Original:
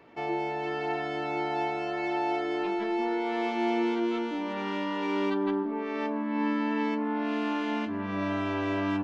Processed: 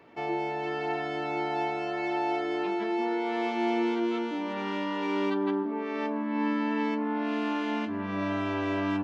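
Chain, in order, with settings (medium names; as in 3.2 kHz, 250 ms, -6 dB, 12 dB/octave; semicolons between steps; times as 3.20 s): high-pass 57 Hz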